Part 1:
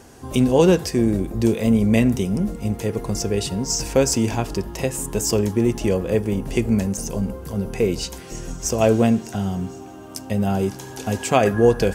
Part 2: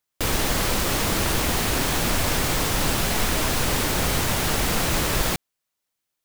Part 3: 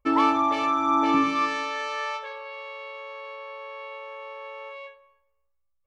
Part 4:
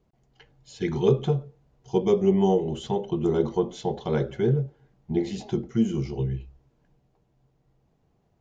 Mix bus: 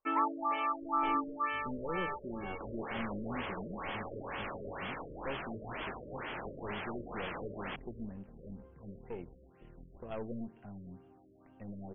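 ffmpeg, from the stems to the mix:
ffmpeg -i stem1.wav -i stem2.wav -i stem3.wav -i stem4.wav -filter_complex "[0:a]aeval=exprs='(tanh(5.01*val(0)+0.7)-tanh(0.7))/5.01':channel_layout=same,adelay=1300,volume=-19dB[link_01];[1:a]highpass=frequency=700:poles=1,adelay=2400,volume=-11.5dB[link_02];[2:a]highpass=frequency=750:poles=1,volume=-6dB[link_03];[3:a]highpass=frequency=740:width_type=q:width=1.6,aeval=exprs='max(val(0),0)':channel_layout=same,volume=-15.5dB[link_04];[link_01][link_02][link_03][link_04]amix=inputs=4:normalize=0,afftfilt=real='re*lt(b*sr/1024,600*pow(3500/600,0.5+0.5*sin(2*PI*2.1*pts/sr)))':imag='im*lt(b*sr/1024,600*pow(3500/600,0.5+0.5*sin(2*PI*2.1*pts/sr)))':win_size=1024:overlap=0.75" out.wav

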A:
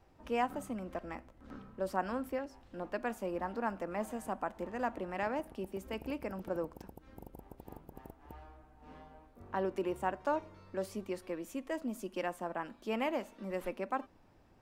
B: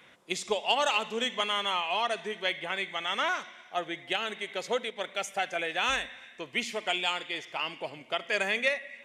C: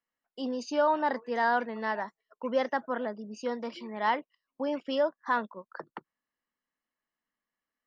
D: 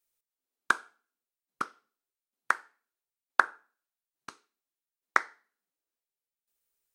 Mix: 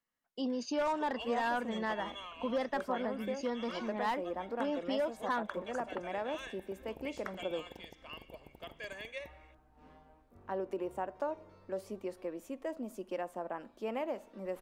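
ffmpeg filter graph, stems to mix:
ffmpeg -i stem1.wav -i stem2.wav -i stem3.wav -i stem4.wav -filter_complex "[0:a]adynamicequalizer=threshold=0.00398:dfrequency=540:dqfactor=0.87:tfrequency=540:tqfactor=0.87:attack=5:release=100:ratio=0.375:range=4:mode=boostabove:tftype=bell,adelay=950,volume=-5.5dB[link_01];[1:a]acompressor=mode=upward:threshold=-39dB:ratio=2.5,lowpass=11000,aecho=1:1:1.8:0.76,adelay=500,volume=-18.5dB[link_02];[2:a]asoftclip=type=hard:threshold=-21dB,bass=frequency=250:gain=5,treble=frequency=4000:gain=0,volume=-0.5dB[link_03];[3:a]adelay=2100,volume=-19dB[link_04];[link_01][link_02][link_03][link_04]amix=inputs=4:normalize=0,acompressor=threshold=-34dB:ratio=2" out.wav

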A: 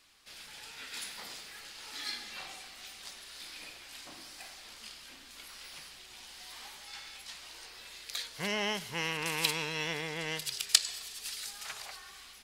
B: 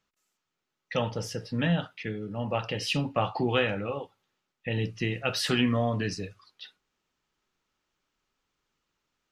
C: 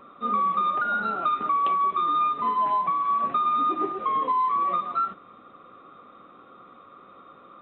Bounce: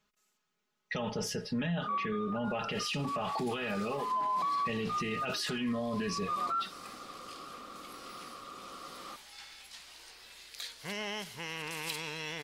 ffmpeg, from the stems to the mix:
ffmpeg -i stem1.wav -i stem2.wav -i stem3.wav -filter_complex "[0:a]asoftclip=type=hard:threshold=-17.5dB,adelay=2450,volume=-3.5dB[link_01];[1:a]aecho=1:1:4.8:0.71,volume=0.5dB,asplit=2[link_02][link_03];[2:a]adelay=1550,volume=1.5dB[link_04];[link_03]apad=whole_len=403972[link_05];[link_04][link_05]sidechaincompress=threshold=-51dB:ratio=5:attack=16:release=108[link_06];[link_01][link_02][link_06]amix=inputs=3:normalize=0,alimiter=level_in=2.5dB:limit=-24dB:level=0:latency=1:release=17,volume=-2.5dB" out.wav

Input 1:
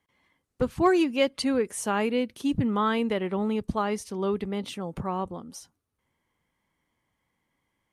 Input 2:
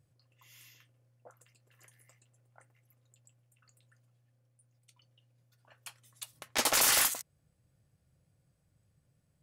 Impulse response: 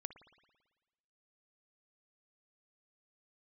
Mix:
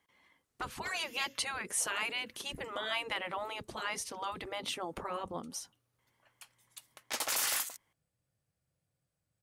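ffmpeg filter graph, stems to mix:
-filter_complex "[0:a]volume=2dB,asplit=2[link_01][link_02];[1:a]adelay=550,volume=0.5dB[link_03];[link_02]apad=whole_len=440079[link_04];[link_03][link_04]sidechaingate=range=-7dB:threshold=-39dB:ratio=16:detection=peak[link_05];[link_01][link_05]amix=inputs=2:normalize=0,afftfilt=real='re*lt(hypot(re,im),0.178)':imag='im*lt(hypot(re,im),0.178)':win_size=1024:overlap=0.75,lowshelf=frequency=320:gain=-8"

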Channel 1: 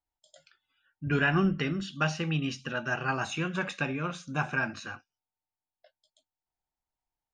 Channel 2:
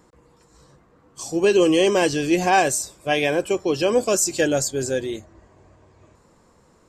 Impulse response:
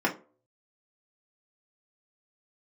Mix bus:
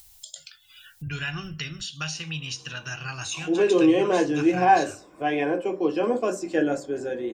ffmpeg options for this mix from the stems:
-filter_complex "[0:a]firequalizer=gain_entry='entry(120,0);entry(210,-18);entry(2700,-1);entry(4000,3)':delay=0.05:min_phase=1,volume=0.5dB,asplit=2[link_01][link_02];[link_02]volume=-24dB[link_03];[1:a]lowpass=2000,aemphasis=mode=production:type=50kf,adelay=2150,volume=-12.5dB,asplit=2[link_04][link_05];[link_05]volume=-6.5dB[link_06];[2:a]atrim=start_sample=2205[link_07];[link_03][link_06]amix=inputs=2:normalize=0[link_08];[link_08][link_07]afir=irnorm=-1:irlink=0[link_09];[link_01][link_04][link_09]amix=inputs=3:normalize=0,highshelf=frequency=6100:gain=9,acompressor=mode=upward:threshold=-28dB:ratio=2.5"

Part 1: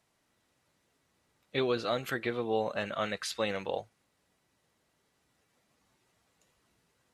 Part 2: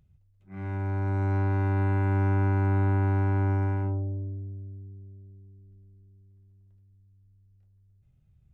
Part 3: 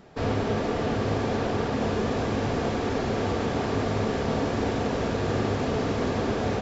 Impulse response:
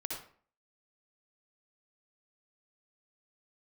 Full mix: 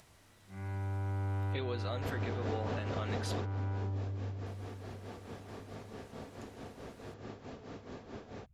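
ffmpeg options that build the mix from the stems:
-filter_complex "[0:a]acompressor=mode=upward:threshold=-45dB:ratio=2.5,volume=-4.5dB,asplit=3[link_01][link_02][link_03];[link_01]atrim=end=3.4,asetpts=PTS-STARTPTS,afade=type=out:start_time=3.396:duration=0.004:curve=hsin[link_04];[link_02]atrim=start=3.4:end=4.46,asetpts=PTS-STARTPTS,volume=0[link_05];[link_03]atrim=start=4.46,asetpts=PTS-STARTPTS,afade=type=in:duration=0.004:curve=hsin[link_06];[link_04][link_05][link_06]concat=n=3:v=0:a=1,asplit=2[link_07][link_08];[1:a]equalizer=frequency=270:width=1.5:gain=-7,asoftclip=type=tanh:threshold=-27dB,volume=-4.5dB[link_09];[2:a]tremolo=f=4.6:d=0.69,adelay=1850,volume=-6.5dB[link_10];[link_08]apad=whole_len=373303[link_11];[link_10][link_11]sidechaingate=range=-12dB:threshold=-49dB:ratio=16:detection=peak[link_12];[link_07][link_09][link_12]amix=inputs=3:normalize=0,alimiter=level_in=2dB:limit=-24dB:level=0:latency=1:release=293,volume=-2dB"

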